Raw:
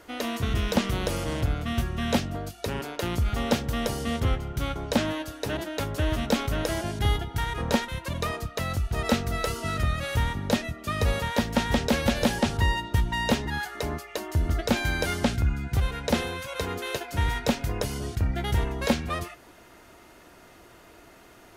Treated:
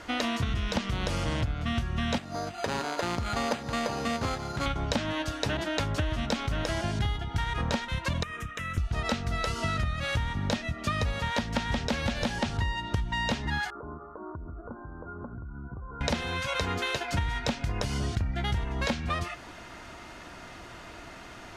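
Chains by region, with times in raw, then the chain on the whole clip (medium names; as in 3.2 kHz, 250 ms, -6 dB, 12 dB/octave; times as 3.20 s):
2.18–4.66 s: upward compressor, threshold -31 dBFS + band-pass filter 810 Hz, Q 0.53 + careless resampling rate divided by 8×, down none, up hold
8.23–8.78 s: bass shelf 410 Hz -8.5 dB + static phaser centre 1.9 kHz, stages 4 + compression 10:1, threshold -38 dBFS
13.70–16.01 s: delay 185 ms -23.5 dB + compression 16:1, threshold -36 dBFS + rippled Chebyshev low-pass 1.5 kHz, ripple 9 dB
whole clip: low-pass 6.4 kHz 12 dB/octave; peaking EQ 420 Hz -7 dB 1 oct; compression 12:1, threshold -34 dBFS; trim +8.5 dB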